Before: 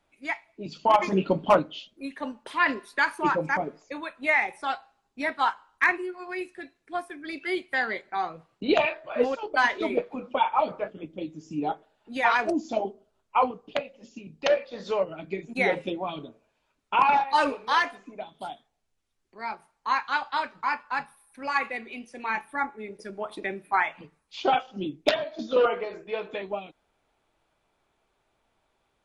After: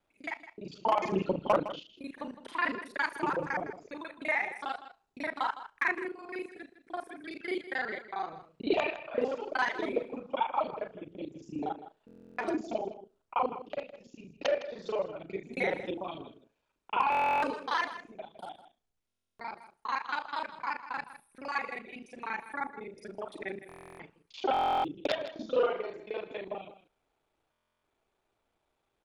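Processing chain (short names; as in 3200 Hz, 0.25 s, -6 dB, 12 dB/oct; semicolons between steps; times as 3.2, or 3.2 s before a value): local time reversal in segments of 34 ms; bell 400 Hz +3 dB 0.85 oct; echo 0.159 s -13.5 dB; stuck buffer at 12.06/17.1/19.07/23.67/24.52/27.51, samples 1024, times 13; gain -7 dB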